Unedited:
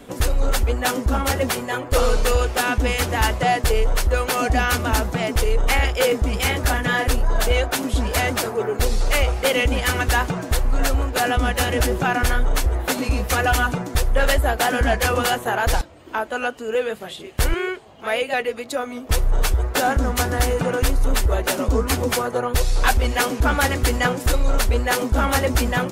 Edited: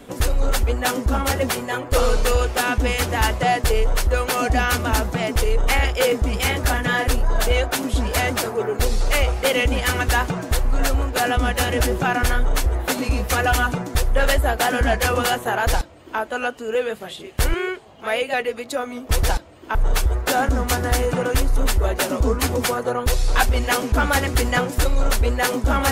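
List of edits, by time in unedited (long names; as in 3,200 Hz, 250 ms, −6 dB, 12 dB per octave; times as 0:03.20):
0:15.67–0:16.19: duplicate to 0:19.23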